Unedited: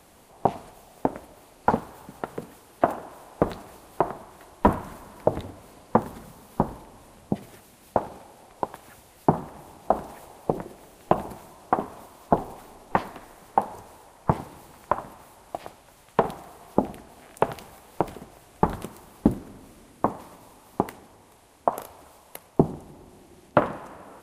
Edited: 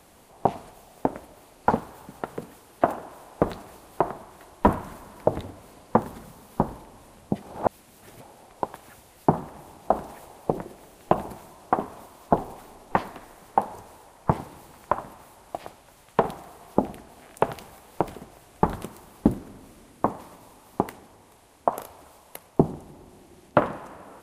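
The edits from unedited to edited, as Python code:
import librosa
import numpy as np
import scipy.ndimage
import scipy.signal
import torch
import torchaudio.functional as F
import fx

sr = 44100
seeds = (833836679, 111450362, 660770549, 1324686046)

y = fx.edit(x, sr, fx.reverse_span(start_s=7.42, length_s=0.79), tone=tone)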